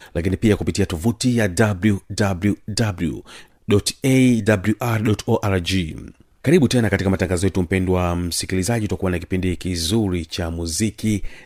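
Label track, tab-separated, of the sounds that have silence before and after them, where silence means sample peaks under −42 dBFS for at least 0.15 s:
3.680000	6.220000	sound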